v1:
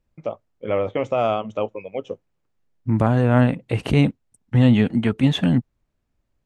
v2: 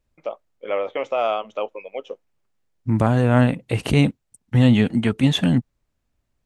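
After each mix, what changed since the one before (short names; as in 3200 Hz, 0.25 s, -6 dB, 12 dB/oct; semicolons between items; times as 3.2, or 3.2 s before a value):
first voice: add BPF 460–4300 Hz; master: add high shelf 4600 Hz +9.5 dB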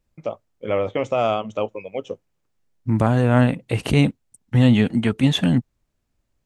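first voice: remove BPF 460–4300 Hz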